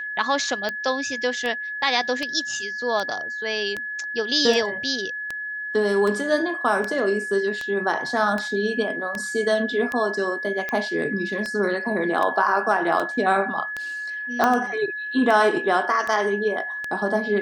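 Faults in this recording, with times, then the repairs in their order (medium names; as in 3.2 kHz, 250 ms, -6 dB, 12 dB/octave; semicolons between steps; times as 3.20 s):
tick 78 rpm -14 dBFS
whine 1.7 kHz -28 dBFS
14.44 s: pop -7 dBFS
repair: de-click; band-stop 1.7 kHz, Q 30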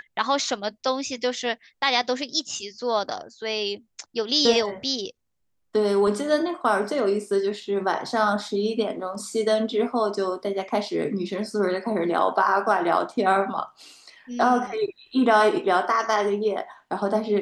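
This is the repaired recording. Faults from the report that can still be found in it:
nothing left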